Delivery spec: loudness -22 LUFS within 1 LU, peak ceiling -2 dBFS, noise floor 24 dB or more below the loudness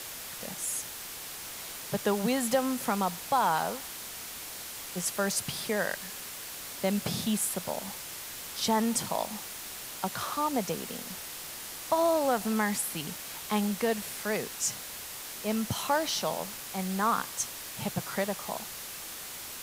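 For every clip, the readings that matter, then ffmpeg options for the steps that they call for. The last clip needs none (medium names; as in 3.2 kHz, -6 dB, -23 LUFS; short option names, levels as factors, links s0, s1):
noise floor -42 dBFS; noise floor target -56 dBFS; loudness -31.5 LUFS; peak level -14.0 dBFS; loudness target -22.0 LUFS
-> -af "afftdn=nr=14:nf=-42"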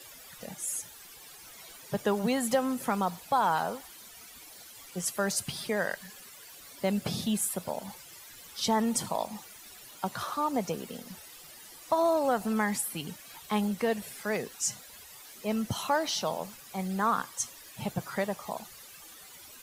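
noise floor -50 dBFS; noise floor target -55 dBFS
-> -af "afftdn=nr=6:nf=-50"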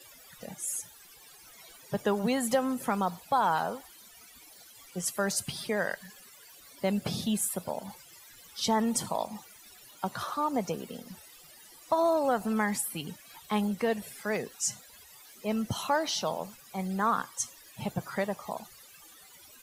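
noise floor -54 dBFS; noise floor target -55 dBFS
-> -af "afftdn=nr=6:nf=-54"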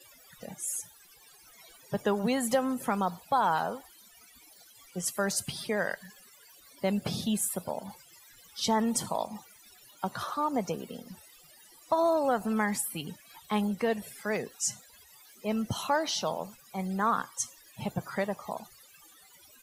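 noise floor -57 dBFS; loudness -31.0 LUFS; peak level -14.0 dBFS; loudness target -22.0 LUFS
-> -af "volume=2.82"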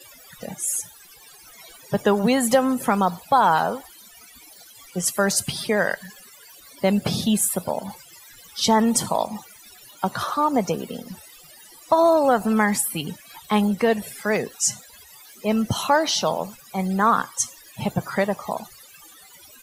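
loudness -22.0 LUFS; peak level -5.0 dBFS; noise floor -48 dBFS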